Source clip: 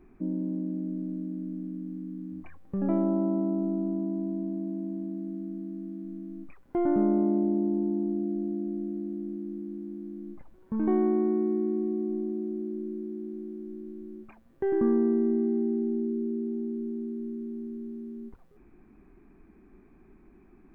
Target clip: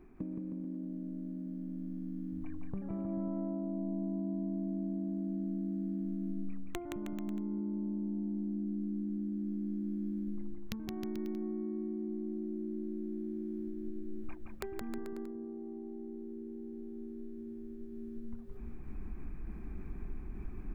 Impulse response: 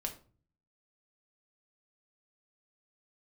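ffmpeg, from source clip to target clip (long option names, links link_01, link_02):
-filter_complex "[0:a]agate=range=-11dB:threshold=-50dB:ratio=16:detection=peak,asubboost=boost=4.5:cutoff=140,areverse,acompressor=mode=upward:threshold=-37dB:ratio=2.5,areverse,alimiter=limit=-24dB:level=0:latency=1:release=396,acompressor=threshold=-46dB:ratio=16,aeval=exprs='(mod(44.7*val(0)+1,2)-1)/44.7':channel_layout=same,asplit=2[link_01][link_02];[link_02]aecho=0:1:170|314.5|437.3|541.7|630.5:0.631|0.398|0.251|0.158|0.1[link_03];[link_01][link_03]amix=inputs=2:normalize=0,volume=8.5dB"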